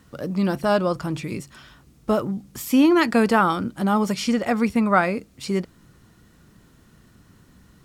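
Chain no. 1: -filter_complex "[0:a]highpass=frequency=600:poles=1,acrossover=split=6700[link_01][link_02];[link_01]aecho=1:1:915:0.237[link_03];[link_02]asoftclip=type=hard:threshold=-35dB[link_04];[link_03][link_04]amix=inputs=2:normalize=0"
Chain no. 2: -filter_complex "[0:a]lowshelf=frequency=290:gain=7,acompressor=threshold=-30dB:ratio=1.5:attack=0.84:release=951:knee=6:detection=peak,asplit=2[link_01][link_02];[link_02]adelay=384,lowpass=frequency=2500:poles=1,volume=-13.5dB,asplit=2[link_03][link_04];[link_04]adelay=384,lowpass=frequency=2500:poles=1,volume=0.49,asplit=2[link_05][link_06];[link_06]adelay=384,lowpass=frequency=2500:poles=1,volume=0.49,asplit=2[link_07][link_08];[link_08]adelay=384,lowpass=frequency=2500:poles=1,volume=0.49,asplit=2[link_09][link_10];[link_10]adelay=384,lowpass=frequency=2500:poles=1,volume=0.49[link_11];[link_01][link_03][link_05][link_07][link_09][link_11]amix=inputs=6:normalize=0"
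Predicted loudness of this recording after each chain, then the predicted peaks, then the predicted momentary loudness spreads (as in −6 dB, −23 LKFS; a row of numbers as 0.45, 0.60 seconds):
−26.0, −26.0 LKFS; −5.5, −11.5 dBFS; 15, 16 LU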